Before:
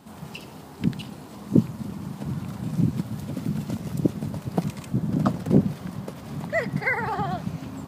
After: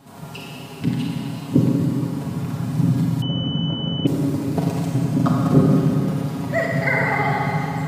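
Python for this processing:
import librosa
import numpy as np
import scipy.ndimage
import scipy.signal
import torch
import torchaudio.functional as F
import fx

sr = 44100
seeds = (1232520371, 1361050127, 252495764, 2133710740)

y = x + 0.65 * np.pad(x, (int(7.3 * sr / 1000.0), 0))[:len(x)]
y = fx.rev_schroeder(y, sr, rt60_s=3.1, comb_ms=32, drr_db=-3.0)
y = fx.pwm(y, sr, carrier_hz=3000.0, at=(3.22, 4.07))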